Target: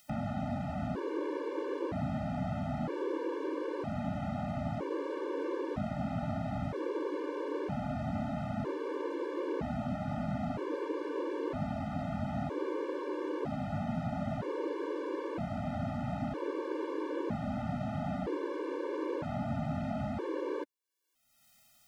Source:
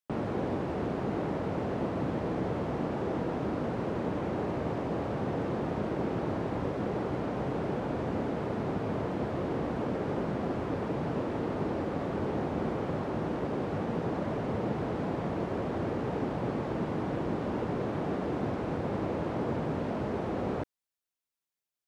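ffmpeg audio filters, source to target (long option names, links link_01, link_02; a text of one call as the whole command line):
ffmpeg -i in.wav -af "acompressor=mode=upward:threshold=-37dB:ratio=2.5,afftfilt=real='re*gt(sin(2*PI*0.52*pts/sr)*(1-2*mod(floor(b*sr/1024/300),2)),0)':imag='im*gt(sin(2*PI*0.52*pts/sr)*(1-2*mod(floor(b*sr/1024/300),2)),0)':win_size=1024:overlap=0.75" out.wav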